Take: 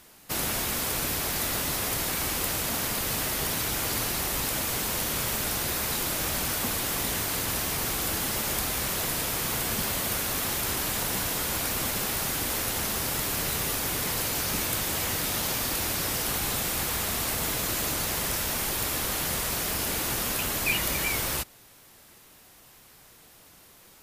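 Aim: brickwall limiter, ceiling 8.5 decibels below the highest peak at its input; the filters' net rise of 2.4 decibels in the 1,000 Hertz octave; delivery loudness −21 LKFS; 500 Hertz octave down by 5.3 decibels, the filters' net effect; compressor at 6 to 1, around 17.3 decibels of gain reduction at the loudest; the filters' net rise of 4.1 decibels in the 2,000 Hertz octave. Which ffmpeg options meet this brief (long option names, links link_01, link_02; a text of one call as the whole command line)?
ffmpeg -i in.wav -af "equalizer=frequency=500:width_type=o:gain=-8.5,equalizer=frequency=1000:width_type=o:gain=4,equalizer=frequency=2000:width_type=o:gain=4.5,acompressor=threshold=-38dB:ratio=6,volume=21dB,alimiter=limit=-13dB:level=0:latency=1" out.wav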